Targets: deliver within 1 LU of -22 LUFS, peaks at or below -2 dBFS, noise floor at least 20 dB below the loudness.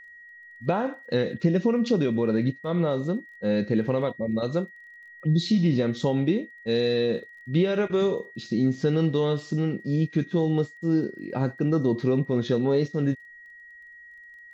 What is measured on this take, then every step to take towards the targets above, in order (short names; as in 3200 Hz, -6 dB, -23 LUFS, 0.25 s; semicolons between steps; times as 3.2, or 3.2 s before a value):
ticks 24/s; steady tone 1900 Hz; tone level -45 dBFS; loudness -25.5 LUFS; peak -10.0 dBFS; loudness target -22.0 LUFS
-> de-click; notch 1900 Hz, Q 30; gain +3.5 dB